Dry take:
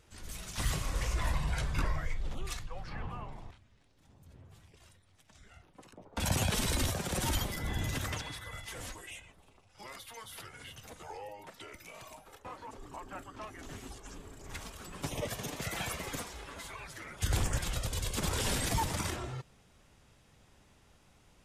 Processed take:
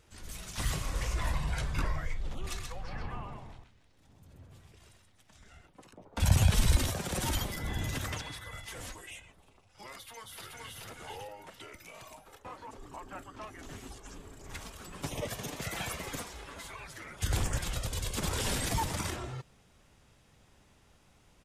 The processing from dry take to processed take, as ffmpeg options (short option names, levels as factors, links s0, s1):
-filter_complex "[0:a]asplit=3[s0][s1][s2];[s0]afade=t=out:st=2.42:d=0.02[s3];[s1]aecho=1:1:130:0.596,afade=t=in:st=2.42:d=0.02,afade=t=out:st=5.66:d=0.02[s4];[s2]afade=t=in:st=5.66:d=0.02[s5];[s3][s4][s5]amix=inputs=3:normalize=0,asplit=3[s6][s7][s8];[s6]afade=t=out:st=6.2:d=0.02[s9];[s7]asubboost=boost=4:cutoff=140,afade=t=in:st=6.2:d=0.02,afade=t=out:st=6.75:d=0.02[s10];[s8]afade=t=in:st=6.75:d=0.02[s11];[s9][s10][s11]amix=inputs=3:normalize=0,asplit=2[s12][s13];[s13]afade=t=in:st=9.96:d=0.01,afade=t=out:st=10.81:d=0.01,aecho=0:1:430|860|1290|1720:0.891251|0.222813|0.0557032|0.0139258[s14];[s12][s14]amix=inputs=2:normalize=0"